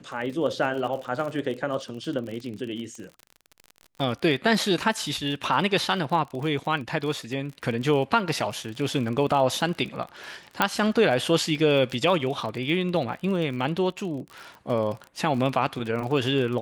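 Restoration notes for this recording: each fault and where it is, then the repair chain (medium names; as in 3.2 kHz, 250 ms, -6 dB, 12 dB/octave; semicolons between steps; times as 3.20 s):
crackle 35 per s -32 dBFS
10.62 s: pop -6 dBFS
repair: de-click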